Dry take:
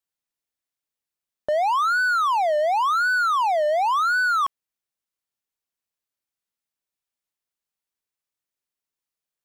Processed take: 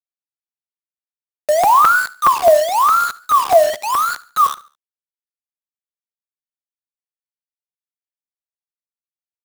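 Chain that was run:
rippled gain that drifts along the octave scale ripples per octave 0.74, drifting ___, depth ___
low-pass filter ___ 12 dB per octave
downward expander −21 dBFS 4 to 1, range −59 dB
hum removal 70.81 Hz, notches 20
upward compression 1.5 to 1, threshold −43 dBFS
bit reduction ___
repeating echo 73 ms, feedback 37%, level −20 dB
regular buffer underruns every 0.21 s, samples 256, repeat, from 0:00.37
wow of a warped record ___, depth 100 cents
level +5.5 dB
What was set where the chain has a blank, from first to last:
+1.9 Hz, 20 dB, 1,100 Hz, 5 bits, 33 1/3 rpm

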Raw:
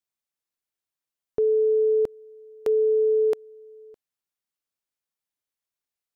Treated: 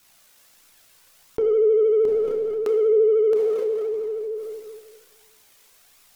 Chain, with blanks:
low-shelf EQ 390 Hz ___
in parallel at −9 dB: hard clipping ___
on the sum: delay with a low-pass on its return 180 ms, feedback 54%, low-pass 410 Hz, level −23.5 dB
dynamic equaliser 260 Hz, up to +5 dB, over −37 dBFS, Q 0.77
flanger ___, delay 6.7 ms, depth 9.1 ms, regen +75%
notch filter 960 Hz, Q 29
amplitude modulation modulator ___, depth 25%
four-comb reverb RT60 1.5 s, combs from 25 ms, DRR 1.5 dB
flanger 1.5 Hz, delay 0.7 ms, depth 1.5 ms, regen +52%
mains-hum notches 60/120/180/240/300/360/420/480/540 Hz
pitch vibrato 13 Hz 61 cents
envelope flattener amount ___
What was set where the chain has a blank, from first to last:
−3 dB, −27.5 dBFS, 0.34 Hz, 58 Hz, 70%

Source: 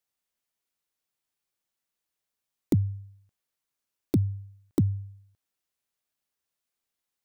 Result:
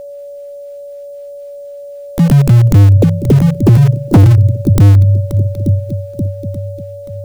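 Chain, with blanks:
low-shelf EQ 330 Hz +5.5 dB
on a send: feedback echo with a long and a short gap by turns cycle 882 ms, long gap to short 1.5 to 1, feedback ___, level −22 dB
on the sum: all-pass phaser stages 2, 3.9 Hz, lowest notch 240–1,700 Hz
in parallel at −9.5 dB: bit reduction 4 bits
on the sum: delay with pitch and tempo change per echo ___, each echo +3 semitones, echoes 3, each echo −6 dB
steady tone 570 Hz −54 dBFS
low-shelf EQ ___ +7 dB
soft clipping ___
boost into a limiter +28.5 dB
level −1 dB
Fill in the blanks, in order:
45%, 187 ms, 100 Hz, −18 dBFS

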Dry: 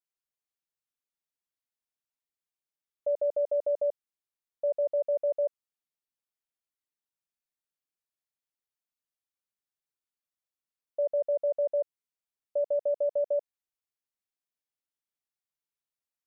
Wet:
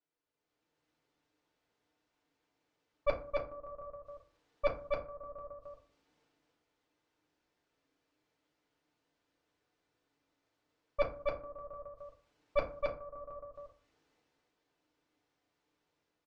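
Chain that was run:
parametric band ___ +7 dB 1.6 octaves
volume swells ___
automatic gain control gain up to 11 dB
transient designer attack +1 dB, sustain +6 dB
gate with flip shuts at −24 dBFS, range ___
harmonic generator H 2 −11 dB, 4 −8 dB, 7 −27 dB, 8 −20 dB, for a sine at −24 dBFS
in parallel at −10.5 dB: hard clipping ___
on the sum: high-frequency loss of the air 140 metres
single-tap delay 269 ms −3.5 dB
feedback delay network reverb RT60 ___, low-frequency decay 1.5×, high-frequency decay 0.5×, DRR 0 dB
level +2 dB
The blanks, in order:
420 Hz, 327 ms, −37 dB, −32.5 dBFS, 0.42 s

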